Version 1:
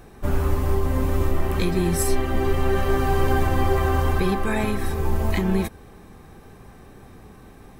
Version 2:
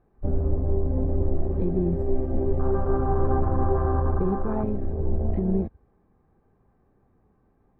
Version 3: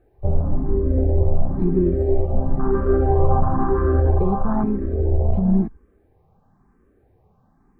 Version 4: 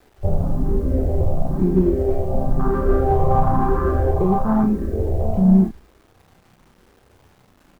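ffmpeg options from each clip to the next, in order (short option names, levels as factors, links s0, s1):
-af "afwtdn=0.0708,lowpass=1200,volume=0.794"
-filter_complex "[0:a]asplit=2[s0][s1];[s1]afreqshift=1[s2];[s0][s2]amix=inputs=2:normalize=1,volume=2.51"
-filter_complex "[0:a]asplit=2[s0][s1];[s1]asoftclip=type=hard:threshold=0.15,volume=0.282[s2];[s0][s2]amix=inputs=2:normalize=0,acrusher=bits=8:mix=0:aa=0.000001,asplit=2[s3][s4];[s4]adelay=32,volume=0.562[s5];[s3][s5]amix=inputs=2:normalize=0"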